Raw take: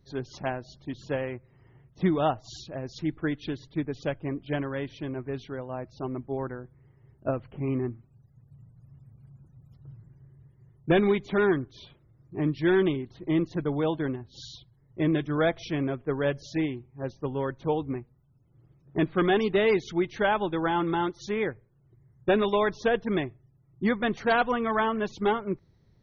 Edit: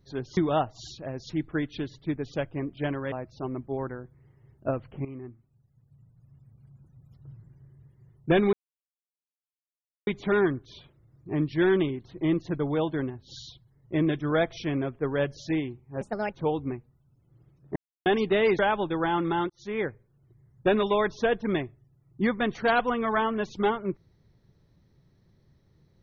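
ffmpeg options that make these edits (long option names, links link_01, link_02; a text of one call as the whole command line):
ffmpeg -i in.wav -filter_complex "[0:a]asplit=11[link_01][link_02][link_03][link_04][link_05][link_06][link_07][link_08][link_09][link_10][link_11];[link_01]atrim=end=0.372[link_12];[link_02]atrim=start=2.058:end=4.812[link_13];[link_03]atrim=start=5.718:end=7.65,asetpts=PTS-STARTPTS,afade=type=out:start_time=1.928:duration=0.004:curve=hsin:silence=0.211349[link_14];[link_04]atrim=start=7.65:end=11.13,asetpts=PTS-STARTPTS,afade=type=in:duration=2.25:silence=0.211349,afade=type=out:start_time=3.476:duration=0.004:curve=hsin,apad=pad_dur=1.54[link_15];[link_05]atrim=start=11.13:end=17.074,asetpts=PTS-STARTPTS,afade=type=in:duration=0.004:curve=hsin[link_16];[link_06]atrim=start=17.07:end=17.56,asetpts=PTS-STARTPTS,asetrate=67914,aresample=44100[link_17];[link_07]atrim=start=17.556:end=18.99,asetpts=PTS-STARTPTS,afade=type=out:start_time=1.43:duration=0.004:curve=hsin[link_18];[link_08]atrim=start=18.99:end=19.29,asetpts=PTS-STARTPTS,volume=0[link_19];[link_09]atrim=start=19.29:end=19.822,asetpts=PTS-STARTPTS,afade=type=in:duration=0.004:curve=hsin[link_20];[link_10]atrim=start=20.208:end=21.12,asetpts=PTS-STARTPTS,afade=type=out:start_time=0.908:duration=0.004:curve=hsin[link_21];[link_11]atrim=start=21.12,asetpts=PTS-STARTPTS,afade=type=in:duration=0.33[link_22];[link_12][link_13]acrossfade=duration=0.004:curve1=hsin:curve2=hsin[link_23];[link_14][link_15][link_16]concat=n=3:v=0:a=1[link_24];[link_23][link_24]acrossfade=duration=0.004:curve1=hsin:curve2=hsin[link_25];[link_25][link_17]acrossfade=duration=0.004:curve1=hsin:curve2=hsin[link_26];[link_18][link_19][link_20]concat=n=3:v=0:a=1[link_27];[link_26][link_27]acrossfade=duration=0.004:curve1=hsin:curve2=hsin[link_28];[link_21][link_22]concat=n=2:v=0:a=1[link_29];[link_28][link_29]acrossfade=duration=0.004:curve1=hsin:curve2=hsin" out.wav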